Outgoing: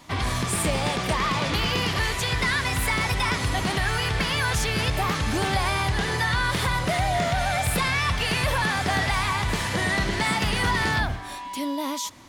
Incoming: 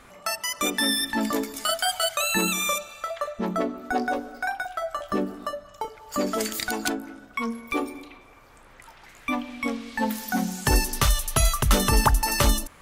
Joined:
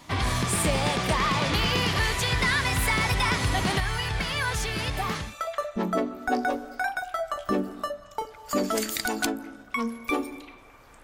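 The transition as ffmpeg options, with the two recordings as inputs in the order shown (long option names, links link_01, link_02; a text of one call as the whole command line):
ffmpeg -i cue0.wav -i cue1.wav -filter_complex "[0:a]asettb=1/sr,asplit=3[link_01][link_02][link_03];[link_01]atrim=end=3.804[link_04];[link_02]atrim=start=3.8:end=5.35,asetpts=PTS-STARTPTS,afade=type=in:duration=0.004:curve=qsin,afade=type=out:start_time=1.546:duration=0.004:curve=qsin,flanger=delay=0.9:depth=8.7:regen=63:speed=0.17:shape=sinusoidal[link_05];[link_03]atrim=start=5.346[link_06];[link_04][link_05]acrossfade=duration=0.004:curve1=hsin:curve2=qsin[link_07];[link_07][link_06]acrossfade=duration=0.004:curve1=qsin:curve2=hsin,apad=whole_dur=11.03,atrim=end=11.03,atrim=end=5.35,asetpts=PTS-STARTPTS[link_08];[1:a]atrim=start=2.8:end=8.66,asetpts=PTS-STARTPTS[link_09];[link_08][link_09]acrossfade=duration=0.18:curve1=tri:curve2=tri" out.wav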